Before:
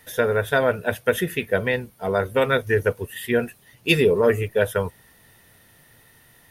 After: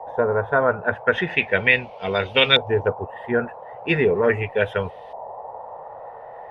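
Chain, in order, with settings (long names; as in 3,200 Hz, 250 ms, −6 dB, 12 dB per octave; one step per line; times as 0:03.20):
noise in a band 460–910 Hz −39 dBFS
0:01.12–0:02.88: flat-topped bell 3,900 Hz +12.5 dB
auto-filter low-pass saw up 0.39 Hz 870–3,400 Hz
level −1.5 dB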